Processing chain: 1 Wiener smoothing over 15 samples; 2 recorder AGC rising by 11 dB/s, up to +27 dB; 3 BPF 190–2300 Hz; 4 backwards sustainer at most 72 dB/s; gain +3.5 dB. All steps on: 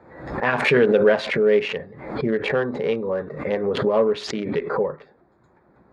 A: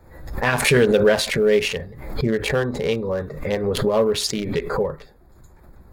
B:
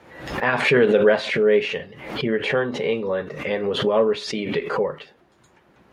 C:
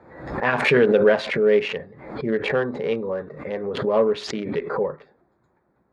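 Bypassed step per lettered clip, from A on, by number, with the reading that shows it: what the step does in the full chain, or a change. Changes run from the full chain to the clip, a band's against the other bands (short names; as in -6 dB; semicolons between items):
3, 4 kHz band +5.5 dB; 1, 4 kHz band +3.5 dB; 2, momentary loudness spread change +3 LU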